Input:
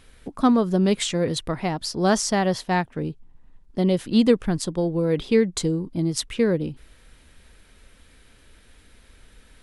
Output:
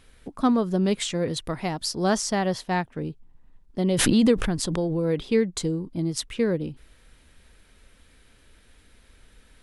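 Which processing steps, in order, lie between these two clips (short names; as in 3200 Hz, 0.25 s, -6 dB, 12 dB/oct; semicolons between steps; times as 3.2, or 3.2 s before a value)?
1.44–2.04 high shelf 4800 Hz +7.5 dB; 3.88–5.29 backwards sustainer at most 26 dB/s; gain -3 dB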